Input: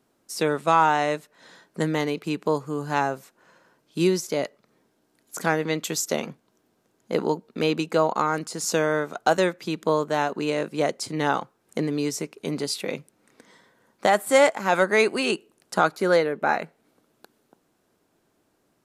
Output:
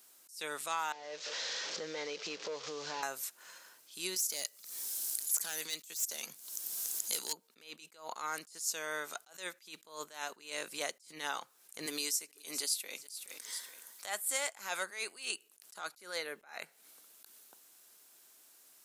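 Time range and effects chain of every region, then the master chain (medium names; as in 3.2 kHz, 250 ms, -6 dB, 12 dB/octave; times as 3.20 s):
0.92–3.03 s: one-bit delta coder 32 kbps, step -38 dBFS + peaking EQ 500 Hz +14 dB 0.48 oct + compression 3:1, threshold -34 dBFS
4.16–7.33 s: tone controls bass +2 dB, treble +13 dB + hard clipper -16 dBFS + three bands compressed up and down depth 70%
11.86–14.06 s: high-pass 180 Hz 24 dB/octave + treble shelf 5.3 kHz +7.5 dB + feedback delay 422 ms, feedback 36%, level -22.5 dB
whole clip: differentiator; compression 4:1, threshold -50 dBFS; attacks held to a fixed rise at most 140 dB/s; trim +15.5 dB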